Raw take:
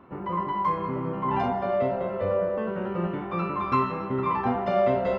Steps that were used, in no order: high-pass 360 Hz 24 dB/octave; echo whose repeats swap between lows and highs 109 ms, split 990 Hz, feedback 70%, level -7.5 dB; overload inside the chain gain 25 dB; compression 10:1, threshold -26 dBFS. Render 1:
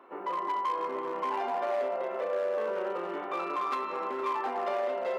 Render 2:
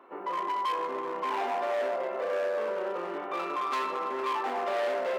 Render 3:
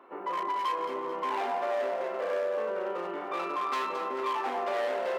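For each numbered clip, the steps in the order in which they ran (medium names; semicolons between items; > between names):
compression > echo whose repeats swap between lows and highs > overload inside the chain > high-pass; echo whose repeats swap between lows and highs > overload inside the chain > compression > high-pass; overload inside the chain > echo whose repeats swap between lows and highs > compression > high-pass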